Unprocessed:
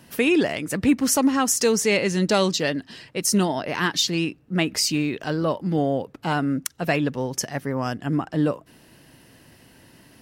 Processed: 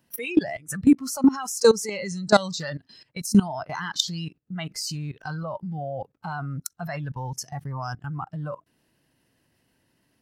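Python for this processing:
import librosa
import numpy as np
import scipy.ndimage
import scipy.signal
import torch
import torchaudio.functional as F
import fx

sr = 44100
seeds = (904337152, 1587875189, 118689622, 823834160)

y = fx.noise_reduce_blind(x, sr, reduce_db=18)
y = fx.level_steps(y, sr, step_db=19)
y = y * librosa.db_to_amplitude(7.0)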